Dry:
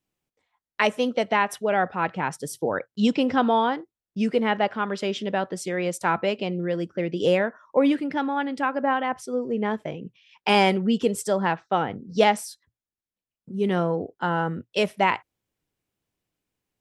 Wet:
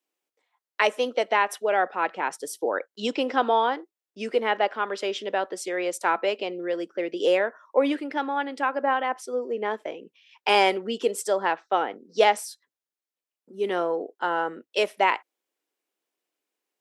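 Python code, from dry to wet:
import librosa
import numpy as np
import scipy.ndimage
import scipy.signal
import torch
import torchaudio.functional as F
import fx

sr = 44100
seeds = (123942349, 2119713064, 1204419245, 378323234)

y = scipy.signal.sosfilt(scipy.signal.butter(4, 320.0, 'highpass', fs=sr, output='sos'), x)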